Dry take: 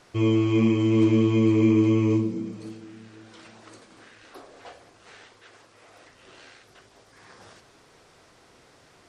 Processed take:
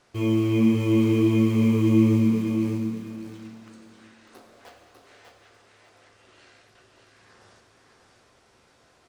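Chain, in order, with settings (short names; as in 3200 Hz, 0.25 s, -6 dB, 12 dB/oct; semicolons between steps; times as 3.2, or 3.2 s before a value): in parallel at -6 dB: requantised 6-bit, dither none; on the sum: feedback echo 0.598 s, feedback 20%, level -5 dB; reverb RT60 1.7 s, pre-delay 6 ms, DRR 4 dB; gain -7 dB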